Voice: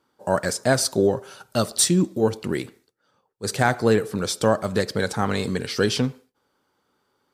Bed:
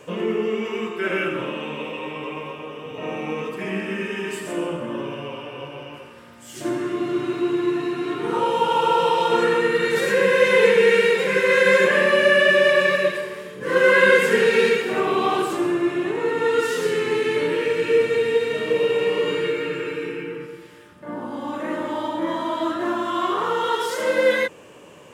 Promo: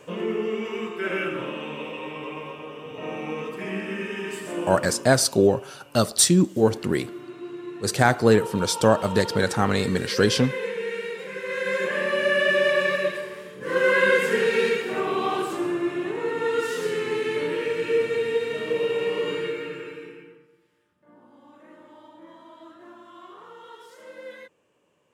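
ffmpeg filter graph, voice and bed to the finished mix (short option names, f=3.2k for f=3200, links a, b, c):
-filter_complex "[0:a]adelay=4400,volume=1.5dB[a];[1:a]volume=6.5dB,afade=t=out:st=4.8:d=0.28:silence=0.281838,afade=t=in:st=11.38:d=1.19:silence=0.316228,afade=t=out:st=19.33:d=1.1:silence=0.125893[b];[a][b]amix=inputs=2:normalize=0"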